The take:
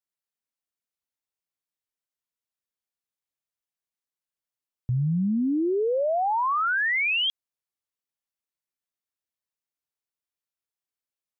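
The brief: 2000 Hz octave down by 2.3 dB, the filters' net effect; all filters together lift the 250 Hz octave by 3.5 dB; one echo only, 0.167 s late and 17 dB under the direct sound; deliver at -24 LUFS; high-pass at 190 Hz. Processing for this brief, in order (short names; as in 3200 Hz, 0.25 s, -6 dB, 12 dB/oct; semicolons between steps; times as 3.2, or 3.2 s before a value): HPF 190 Hz; bell 250 Hz +6.5 dB; bell 2000 Hz -3 dB; echo 0.167 s -17 dB; gain -0.5 dB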